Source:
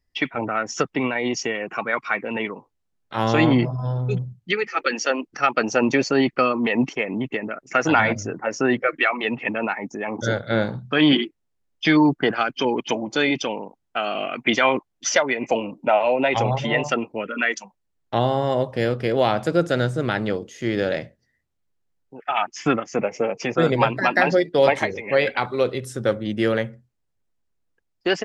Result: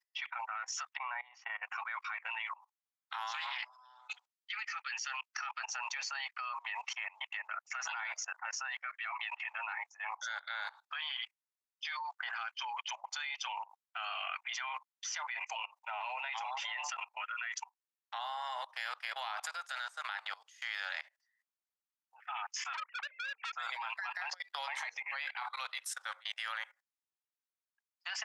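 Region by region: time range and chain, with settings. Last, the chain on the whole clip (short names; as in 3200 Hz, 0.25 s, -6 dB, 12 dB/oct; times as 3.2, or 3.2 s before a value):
0.97–1.63 LPF 1100 Hz + resonant low shelf 330 Hz +6.5 dB, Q 3
3.31–5.6 HPF 1300 Hz 6 dB/oct + Doppler distortion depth 0.16 ms
22.73–23.53 sine-wave speech + compressor 10:1, threshold -23 dBFS + core saturation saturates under 2200 Hz
24.13–25.12 bell 340 Hz +8.5 dB 0.8 oct + compressor 16:1, threshold -20 dBFS
whole clip: steep high-pass 850 Hz 48 dB/oct; limiter -17.5 dBFS; level quantiser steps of 21 dB; gain +2.5 dB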